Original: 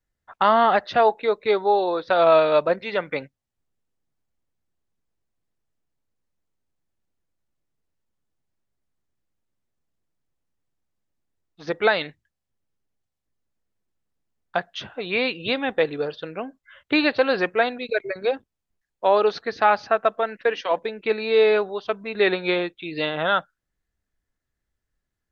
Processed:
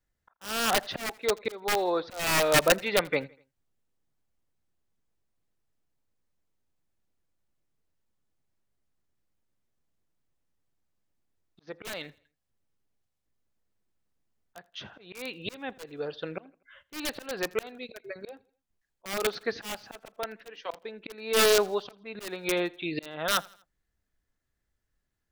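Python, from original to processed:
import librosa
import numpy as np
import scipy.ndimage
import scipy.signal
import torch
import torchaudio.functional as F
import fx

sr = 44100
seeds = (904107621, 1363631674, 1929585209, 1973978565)

y = (np.mod(10.0 ** (11.5 / 20.0) * x + 1.0, 2.0) - 1.0) / 10.0 ** (11.5 / 20.0)
y = fx.auto_swell(y, sr, attack_ms=617.0)
y = fx.echo_feedback(y, sr, ms=82, feedback_pct=45, wet_db=-24.0)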